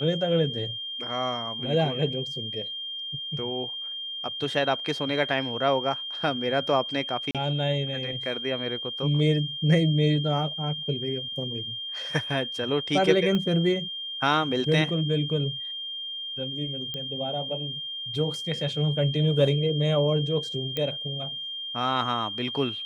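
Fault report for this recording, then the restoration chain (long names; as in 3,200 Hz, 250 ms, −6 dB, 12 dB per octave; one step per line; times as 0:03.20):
whistle 3,200 Hz −32 dBFS
0:07.31–0:07.35: drop-out 37 ms
0:13.35: click −16 dBFS
0:16.94: click −19 dBFS
0:20.77: click −15 dBFS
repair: click removal
notch filter 3,200 Hz, Q 30
repair the gap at 0:07.31, 37 ms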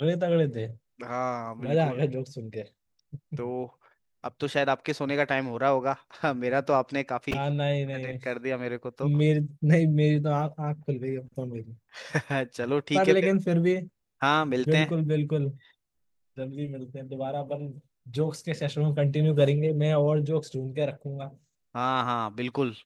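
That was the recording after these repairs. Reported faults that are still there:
0:13.35: click
0:16.94: click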